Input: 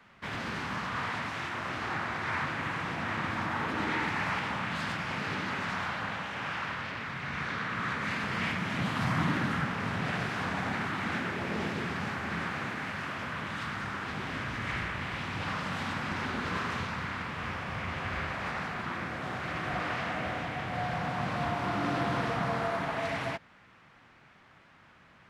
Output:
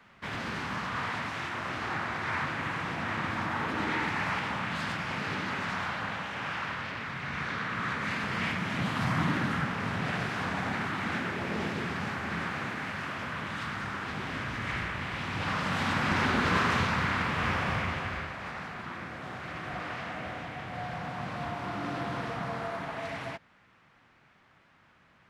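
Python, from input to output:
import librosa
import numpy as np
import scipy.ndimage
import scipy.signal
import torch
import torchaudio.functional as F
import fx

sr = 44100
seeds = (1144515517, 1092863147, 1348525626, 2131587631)

y = fx.gain(x, sr, db=fx.line((15.13, 0.5), (16.17, 7.0), (17.69, 7.0), (18.32, -4.0)))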